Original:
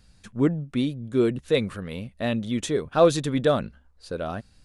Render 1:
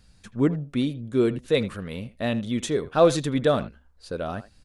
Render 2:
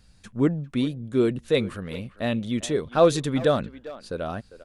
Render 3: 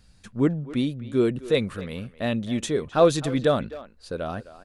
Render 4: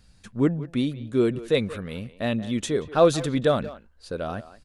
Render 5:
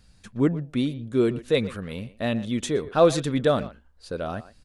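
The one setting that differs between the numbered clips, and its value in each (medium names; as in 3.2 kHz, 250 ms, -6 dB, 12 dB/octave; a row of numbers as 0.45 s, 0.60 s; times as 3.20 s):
speakerphone echo, time: 80 ms, 400 ms, 260 ms, 180 ms, 120 ms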